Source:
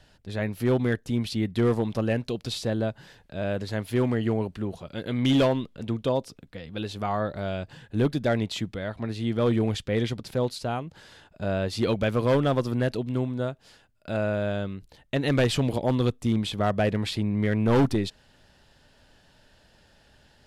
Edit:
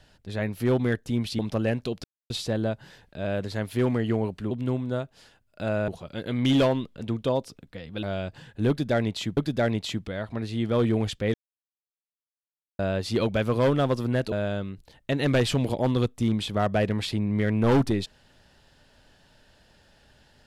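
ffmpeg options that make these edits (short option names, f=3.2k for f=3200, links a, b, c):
-filter_complex "[0:a]asplit=10[a][b][c][d][e][f][g][h][i][j];[a]atrim=end=1.392[k];[b]atrim=start=1.818:end=2.47,asetpts=PTS-STARTPTS,afade=t=out:st=0.648:d=0.004:c=hsin,apad=pad_dur=0.26[l];[c]atrim=start=2.47:end=4.682,asetpts=PTS-STARTPTS,afade=t=in:d=0.004:c=hsin[m];[d]atrim=start=12.988:end=14.362[n];[e]atrim=start=4.678:end=6.832[o];[f]atrim=start=7.378:end=8.722[p];[g]atrim=start=8.038:end=10.01,asetpts=PTS-STARTPTS,afade=t=out:st=1.968:d=0.004:c=hsin[q];[h]atrim=start=10.01:end=11.46,asetpts=PTS-STARTPTS,volume=0[r];[i]atrim=start=11.46:end=12.992,asetpts=PTS-STARTPTS,afade=t=in:d=0.004:c=hsin[s];[j]atrim=start=14.358[t];[l][m]concat=n=2:v=0:a=1[u];[k][u]acrossfade=d=0.004:c1=hsin:c2=hsin[v];[v][n]acrossfade=d=0.004:c1=hsin:c2=hsin[w];[w][o]acrossfade=d=0.004:c1=hsin:c2=hsin[x];[x][p]acrossfade=d=0.004:c1=hsin:c2=hsin[y];[q][r][s]concat=n=3:v=0:a=1[z];[y][z]acrossfade=d=0.004:c1=hsin:c2=hsin[aa];[aa][t]acrossfade=d=0.004:c1=hsin:c2=hsin"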